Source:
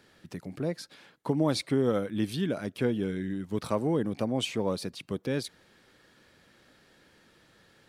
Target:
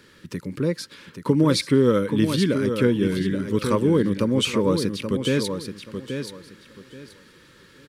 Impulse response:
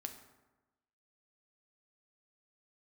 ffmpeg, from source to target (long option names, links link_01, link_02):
-af "asuperstop=centerf=720:order=4:qfactor=2,aecho=1:1:829|1658|2487:0.422|0.097|0.0223,volume=8.5dB"